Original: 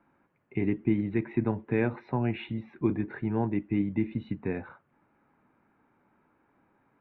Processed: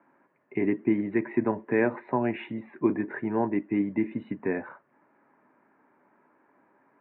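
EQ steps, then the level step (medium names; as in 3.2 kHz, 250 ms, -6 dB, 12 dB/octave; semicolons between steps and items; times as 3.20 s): cabinet simulation 180–2900 Hz, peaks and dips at 270 Hz +4 dB, 390 Hz +5 dB, 610 Hz +8 dB, 1 kHz +7 dB, 1.8 kHz +8 dB; 0.0 dB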